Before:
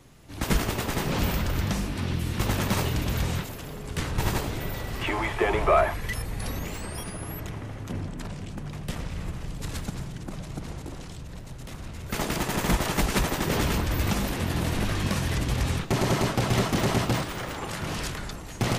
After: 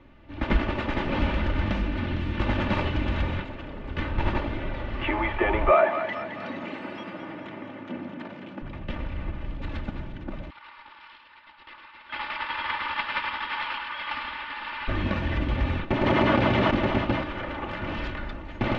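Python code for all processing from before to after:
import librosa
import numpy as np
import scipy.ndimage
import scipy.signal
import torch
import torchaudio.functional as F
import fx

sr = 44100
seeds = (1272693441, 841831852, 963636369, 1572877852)

y = fx.chain(x, sr, fx.high_shelf(hz=6600.0, db=7.5),
    fx.echo_single(ms=457, db=-11.0), at=(0.75, 3.22))
y = fx.chain(y, sr, fx.highpass(hz=170.0, slope=24),
    fx.echo_split(split_hz=660.0, low_ms=115, high_ms=216, feedback_pct=52, wet_db=-8.5), at=(5.71, 8.62))
y = fx.chain(y, sr, fx.brickwall_highpass(low_hz=820.0),
    fx.echo_single(ms=106, db=-6.5),
    fx.resample_bad(factor=4, down='none', up='filtered'), at=(10.5, 14.88))
y = fx.chain(y, sr, fx.highpass(hz=63.0, slope=12),
    fx.env_flatten(amount_pct=100), at=(16.06, 16.71))
y = scipy.signal.sosfilt(scipy.signal.butter(4, 3000.0, 'lowpass', fs=sr, output='sos'), y)
y = y + 0.58 * np.pad(y, (int(3.4 * sr / 1000.0), 0))[:len(y)]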